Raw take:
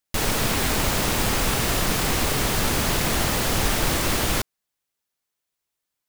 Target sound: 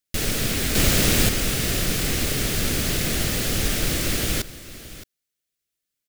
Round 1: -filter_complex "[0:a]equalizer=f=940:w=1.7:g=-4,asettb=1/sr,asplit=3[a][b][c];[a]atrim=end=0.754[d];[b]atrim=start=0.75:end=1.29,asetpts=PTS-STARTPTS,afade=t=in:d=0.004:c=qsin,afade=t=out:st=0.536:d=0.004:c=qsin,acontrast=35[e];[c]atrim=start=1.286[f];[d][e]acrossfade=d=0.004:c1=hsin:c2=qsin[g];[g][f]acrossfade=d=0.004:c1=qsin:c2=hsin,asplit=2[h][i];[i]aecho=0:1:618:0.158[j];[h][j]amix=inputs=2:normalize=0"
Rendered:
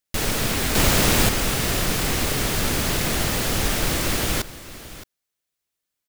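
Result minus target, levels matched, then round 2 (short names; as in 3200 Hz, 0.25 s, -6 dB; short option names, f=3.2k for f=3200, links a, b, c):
1000 Hz band +6.0 dB
-filter_complex "[0:a]equalizer=f=940:w=1.7:g=-15,asettb=1/sr,asplit=3[a][b][c];[a]atrim=end=0.754[d];[b]atrim=start=0.75:end=1.29,asetpts=PTS-STARTPTS,afade=t=in:d=0.004:c=qsin,afade=t=out:st=0.536:d=0.004:c=qsin,acontrast=35[e];[c]atrim=start=1.286[f];[d][e]acrossfade=d=0.004:c1=hsin:c2=qsin[g];[g][f]acrossfade=d=0.004:c1=qsin:c2=hsin,asplit=2[h][i];[i]aecho=0:1:618:0.158[j];[h][j]amix=inputs=2:normalize=0"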